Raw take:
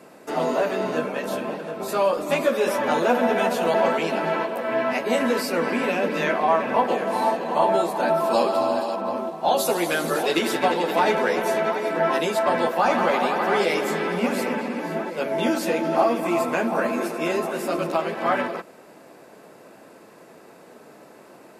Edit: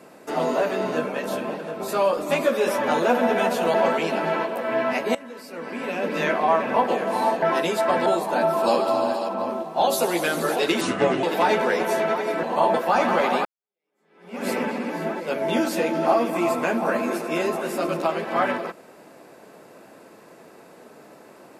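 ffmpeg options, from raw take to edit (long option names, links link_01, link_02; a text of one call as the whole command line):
ffmpeg -i in.wav -filter_complex "[0:a]asplit=9[link_01][link_02][link_03][link_04][link_05][link_06][link_07][link_08][link_09];[link_01]atrim=end=5.15,asetpts=PTS-STARTPTS,afade=type=out:start_time=5.146:duration=0.004:curve=hsin:silence=0.11885[link_10];[link_02]atrim=start=5.15:end=7.422,asetpts=PTS-STARTPTS,afade=type=in:duration=1.06:curve=qua:silence=0.11885[link_11];[link_03]atrim=start=11.998:end=12.642[link_12];[link_04]atrim=start=7.728:end=10.484[link_13];[link_05]atrim=start=10.48:end=10.8,asetpts=PTS-STARTPTS,asetrate=33516,aresample=44100,atrim=end_sample=18568,asetpts=PTS-STARTPTS[link_14];[link_06]atrim=start=10.796:end=12.002[link_15];[link_07]atrim=start=7.418:end=7.732[link_16];[link_08]atrim=start=12.638:end=13.35,asetpts=PTS-STARTPTS,afade=type=out:start_time=0.708:duration=0.004:curve=hsin[link_17];[link_09]atrim=start=13.35,asetpts=PTS-STARTPTS,afade=type=in:duration=1.02:curve=exp[link_18];[link_10][link_11]concat=n=2:v=0:a=1[link_19];[link_19][link_12]acrossfade=duration=0.004:curve1=hsin:curve2=hsin[link_20];[link_20][link_13]acrossfade=duration=0.004:curve1=hsin:curve2=hsin[link_21];[link_21][link_14]acrossfade=duration=0.004:curve1=hsin:curve2=hsin[link_22];[link_22][link_15]acrossfade=duration=0.004:curve1=hsin:curve2=hsin[link_23];[link_23][link_16]acrossfade=duration=0.004:curve1=hsin:curve2=hsin[link_24];[link_17][link_18]concat=n=2:v=0:a=1[link_25];[link_24][link_25]acrossfade=duration=0.004:curve1=hsin:curve2=hsin" out.wav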